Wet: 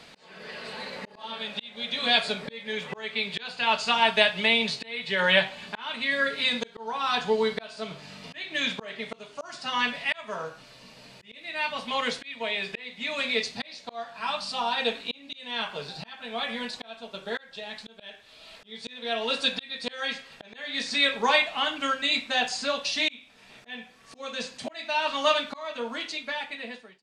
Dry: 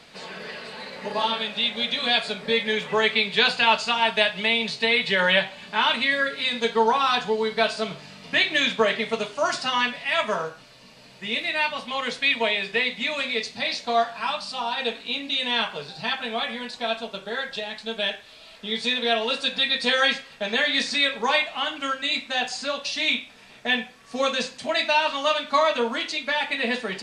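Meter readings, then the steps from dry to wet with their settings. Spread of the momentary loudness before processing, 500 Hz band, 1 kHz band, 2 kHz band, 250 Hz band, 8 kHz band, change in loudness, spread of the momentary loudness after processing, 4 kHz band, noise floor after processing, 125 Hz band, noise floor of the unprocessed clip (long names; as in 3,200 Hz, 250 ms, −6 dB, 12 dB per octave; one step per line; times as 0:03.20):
10 LU, −5.5 dB, −5.0 dB, −4.5 dB, −5.0 dB, −3.5 dB, −4.0 dB, 17 LU, −4.5 dB, −54 dBFS, −3.5 dB, −49 dBFS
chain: fade-out on the ending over 1.64 s
volume swells 562 ms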